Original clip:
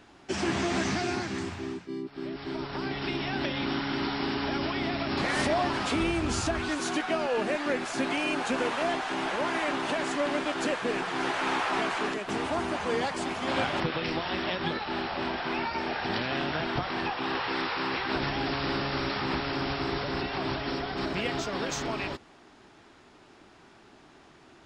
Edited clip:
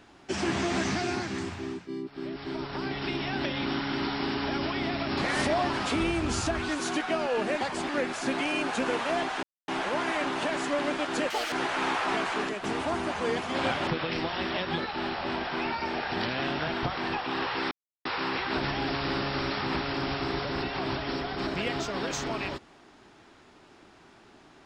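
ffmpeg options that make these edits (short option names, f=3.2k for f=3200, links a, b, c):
-filter_complex "[0:a]asplit=8[a][b][c][d][e][f][g][h];[a]atrim=end=7.612[i];[b]atrim=start=13.028:end=13.312[j];[c]atrim=start=7.608:end=9.15,asetpts=PTS-STARTPTS,afade=t=out:st=1.538:d=0.004:c=hsin,apad=pad_dur=0.25[k];[d]atrim=start=9.15:end=10.774,asetpts=PTS-STARTPTS,afade=t=in:d=0.004:c=hsin[l];[e]atrim=start=10.77:end=11.17,asetpts=PTS-STARTPTS,asetrate=79380,aresample=44100[m];[f]atrim=start=11.166:end=13.032[n];[g]atrim=start=13.308:end=17.64,asetpts=PTS-STARTPTS,afade=t=out:st=4.328:d=0.004:c=hsin,apad=pad_dur=0.34[o];[h]atrim=start=17.64,asetpts=PTS-STARTPTS,afade=t=in:d=0.004:c=hsin[p];[i][j]acrossfade=d=0.004:c1=hsin:c2=hsin[q];[k][l]concat=n=2:v=0:a=1[r];[q][r]acrossfade=d=0.004:c1=hsin:c2=hsin[s];[s][m]acrossfade=d=0.004:c1=hsin:c2=hsin[t];[t][n]acrossfade=d=0.004:c1=hsin:c2=hsin[u];[o][p]concat=n=2:v=0:a=1[v];[u][v]acrossfade=d=0.004:c1=hsin:c2=hsin"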